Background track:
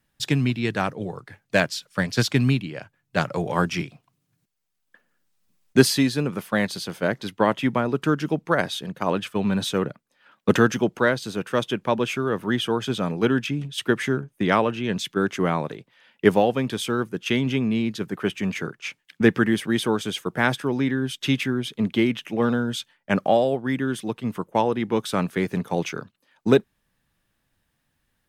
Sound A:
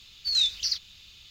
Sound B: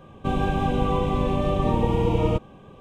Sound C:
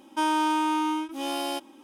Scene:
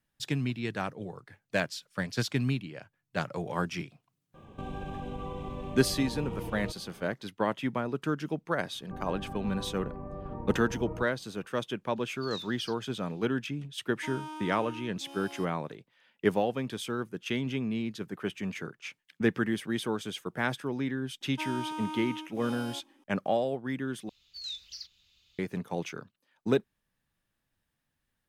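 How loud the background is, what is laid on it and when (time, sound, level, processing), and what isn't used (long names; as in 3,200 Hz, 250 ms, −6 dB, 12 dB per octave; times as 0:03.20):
background track −9 dB
0:04.34: mix in B −5.5 dB + downward compressor 4 to 1, threshold −30 dBFS
0:08.66: mix in B −17.5 dB + Butterworth low-pass 1,800 Hz
0:11.96: mix in A −18 dB
0:13.86: mix in C −17 dB
0:21.21: mix in C −12.5 dB
0:24.09: overwrite with A −15.5 dB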